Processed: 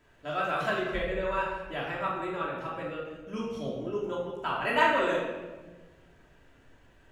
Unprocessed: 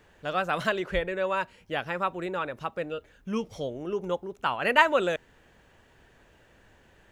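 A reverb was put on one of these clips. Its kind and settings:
rectangular room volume 920 cubic metres, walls mixed, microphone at 2.9 metres
level −8.5 dB

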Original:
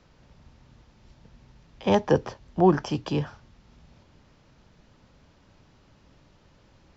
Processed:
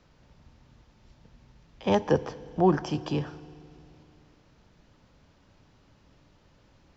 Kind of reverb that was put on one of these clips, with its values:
feedback delay network reverb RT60 2.8 s, high-frequency decay 0.95×, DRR 16.5 dB
level −2.5 dB

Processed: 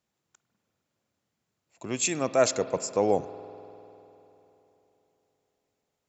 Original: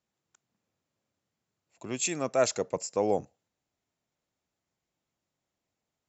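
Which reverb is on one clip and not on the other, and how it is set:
spring reverb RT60 3.4 s, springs 49 ms, chirp 20 ms, DRR 13.5 dB
level +3 dB

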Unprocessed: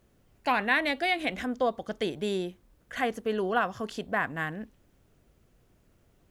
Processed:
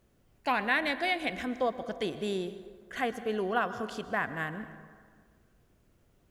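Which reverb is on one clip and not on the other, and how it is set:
dense smooth reverb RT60 1.8 s, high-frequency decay 0.5×, pre-delay 105 ms, DRR 12 dB
level −2.5 dB

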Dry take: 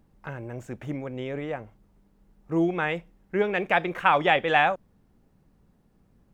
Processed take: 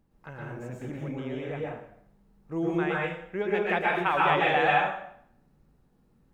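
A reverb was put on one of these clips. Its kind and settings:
dense smooth reverb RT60 0.68 s, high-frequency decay 0.85×, pre-delay 105 ms, DRR −4 dB
level −7 dB

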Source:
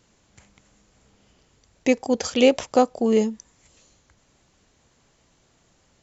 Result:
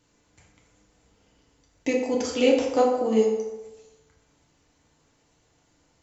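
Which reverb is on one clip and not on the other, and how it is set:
feedback delay network reverb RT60 1.1 s, low-frequency decay 0.8×, high-frequency decay 0.6×, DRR −2 dB
level −7 dB

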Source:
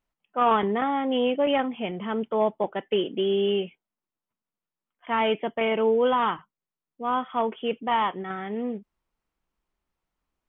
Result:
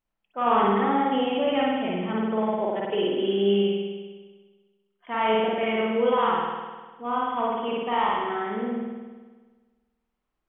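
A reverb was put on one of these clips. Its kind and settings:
spring reverb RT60 1.4 s, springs 50 ms, chirp 35 ms, DRR −5 dB
level −5 dB

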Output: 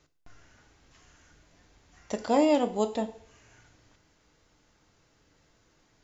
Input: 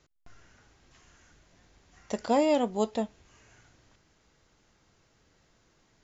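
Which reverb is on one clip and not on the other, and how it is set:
feedback delay network reverb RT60 0.58 s, low-frequency decay 0.75×, high-frequency decay 0.95×, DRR 8.5 dB

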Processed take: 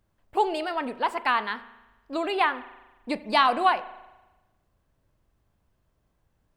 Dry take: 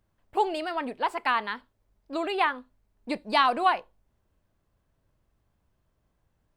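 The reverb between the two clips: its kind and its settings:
spring reverb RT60 1.1 s, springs 37 ms, chirp 65 ms, DRR 14.5 dB
level +1.5 dB

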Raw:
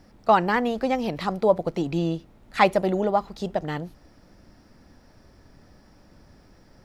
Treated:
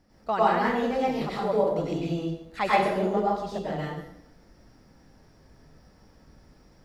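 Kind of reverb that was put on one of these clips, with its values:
dense smooth reverb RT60 0.78 s, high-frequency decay 0.85×, pre-delay 85 ms, DRR −7.5 dB
level −10.5 dB

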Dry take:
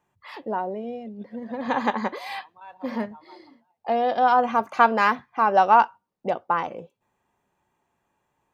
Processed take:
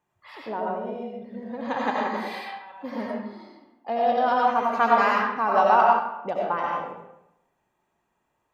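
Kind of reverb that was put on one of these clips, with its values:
comb and all-pass reverb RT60 0.85 s, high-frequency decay 0.7×, pre-delay 50 ms, DRR −3 dB
level −5 dB

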